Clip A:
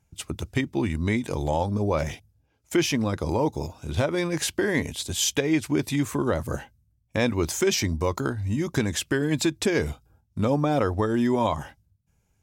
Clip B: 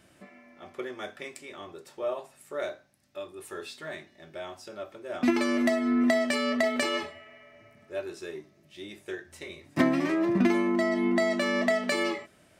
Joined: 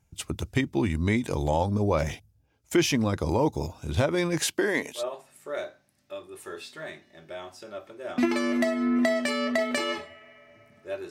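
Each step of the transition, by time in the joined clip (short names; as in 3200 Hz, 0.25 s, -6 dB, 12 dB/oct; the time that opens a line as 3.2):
clip A
4.39–5.04 HPF 150 Hz -> 610 Hz
4.99 switch to clip B from 2.04 s, crossfade 0.10 s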